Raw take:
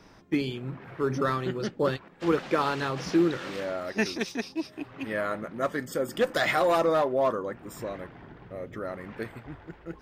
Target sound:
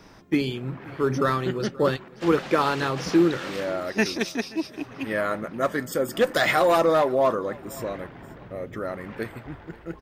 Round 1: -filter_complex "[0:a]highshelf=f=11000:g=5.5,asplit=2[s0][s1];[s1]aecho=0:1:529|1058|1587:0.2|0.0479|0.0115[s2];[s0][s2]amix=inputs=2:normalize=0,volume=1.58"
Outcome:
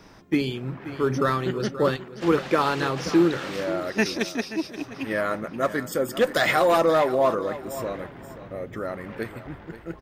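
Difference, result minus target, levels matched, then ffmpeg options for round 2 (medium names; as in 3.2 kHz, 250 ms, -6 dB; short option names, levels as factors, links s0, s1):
echo-to-direct +8 dB
-filter_complex "[0:a]highshelf=f=11000:g=5.5,asplit=2[s0][s1];[s1]aecho=0:1:529|1058:0.0794|0.0191[s2];[s0][s2]amix=inputs=2:normalize=0,volume=1.58"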